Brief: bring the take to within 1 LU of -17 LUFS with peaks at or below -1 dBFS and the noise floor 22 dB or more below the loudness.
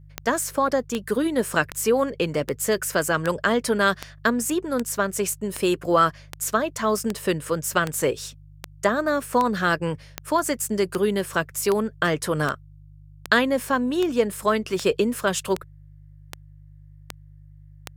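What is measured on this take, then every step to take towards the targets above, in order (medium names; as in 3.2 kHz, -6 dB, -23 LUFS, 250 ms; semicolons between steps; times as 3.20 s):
clicks found 24; hum 50 Hz; highest harmonic 150 Hz; hum level -44 dBFS; loudness -23.5 LUFS; peak level -4.0 dBFS; loudness target -17.0 LUFS
-> de-click; de-hum 50 Hz, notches 3; trim +6.5 dB; peak limiter -1 dBFS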